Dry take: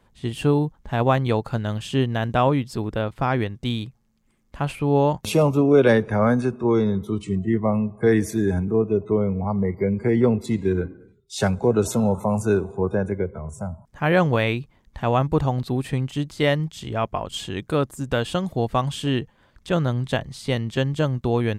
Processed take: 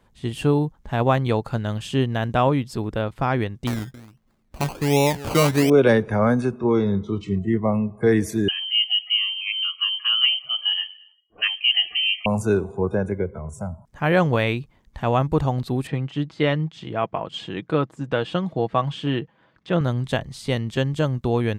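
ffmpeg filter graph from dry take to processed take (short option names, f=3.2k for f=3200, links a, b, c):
-filter_complex "[0:a]asettb=1/sr,asplit=3[a][b][c];[a]atrim=end=3.674[d];[b]atrim=start=3.67:end=5.7,asetpts=PTS-STARTPTS,afade=t=in:d=0.004:c=qsin,afade=t=out:st=2.026:d=0.004:c=qsin,aecho=1:1:270:0.126,atrim=end_sample=89523,acrusher=samples=20:mix=1:aa=0.000001:lfo=1:lforange=12:lforate=1.3[e];[c]atrim=start=5.696[f];[d][e]acrossfade=d=0.004:c1=hsin:c2=qsin[g];[g][f]acrossfade=d=0.004:c1=qsin:c2=hsin,asettb=1/sr,asplit=3[h][i][j];[h]atrim=end=6.594[k];[i]atrim=start=6.59:end=7.41,asetpts=PTS-STARTPTS,afade=t=in:d=0.004:c=qsin,afade=t=out:st=0.816:d=0.004:c=qsin,lowpass=f=5.9k:w=0.5412,lowpass=f=5.9k:w=1.3066,asplit=2[l][m];[m]adelay=30,volume=-12.5dB[n];[l][n]amix=inputs=2:normalize=0,atrim=end_sample=36162[o];[j]atrim=start=7.406[p];[k][o]acrossfade=d=0.004:c1=hsin:c2=qsin[q];[q][p]acrossfade=d=0.004:c1=qsin:c2=hsin,asettb=1/sr,asplit=3[r][s][t];[r]atrim=end=8.484[u];[s]atrim=start=8.48:end=12.26,asetpts=PTS-STARTPTS,afade=t=in:d=0.004:c=qsin,afade=t=out:st=3.776:d=0.004:c=qsin,highpass=210,lowpass=f=2.8k:t=q:w=0.5098,lowpass=f=2.8k:t=q:w=0.6013,lowpass=f=2.8k:t=q:w=0.9,lowpass=f=2.8k:t=q:w=2.563,afreqshift=-3300[v];[t]atrim=start=12.256[w];[u][v]acrossfade=d=0.004:c1=hsin:c2=qsin[x];[x][w]acrossfade=d=0.004:c1=qsin:c2=hsin,asettb=1/sr,asplit=3[y][z][aa];[y]atrim=end=15.874[ab];[z]atrim=start=15.87:end=19.81,asetpts=PTS-STARTPTS,afade=t=in:d=0.004:c=qsin,afade=t=out:st=3.936:d=0.004:c=qsin,highpass=130,lowpass=3.4k,aecho=1:1:6.2:0.33,atrim=end_sample=173754[ac];[aa]atrim=start=19.806[ad];[ab][ac]acrossfade=d=0.004:c1=hsin:c2=qsin[ae];[ae][ad]acrossfade=d=0.004:c1=qsin:c2=hsin"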